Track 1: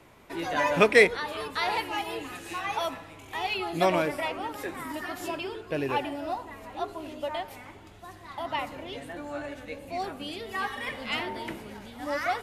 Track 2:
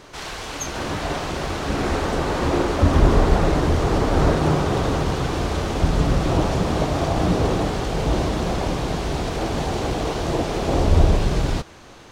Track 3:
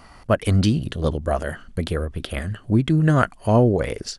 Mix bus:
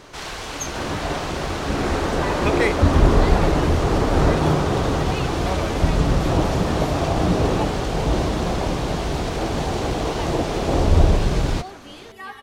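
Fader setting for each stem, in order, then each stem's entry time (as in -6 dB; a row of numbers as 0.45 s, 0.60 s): -4.5 dB, +0.5 dB, mute; 1.65 s, 0.00 s, mute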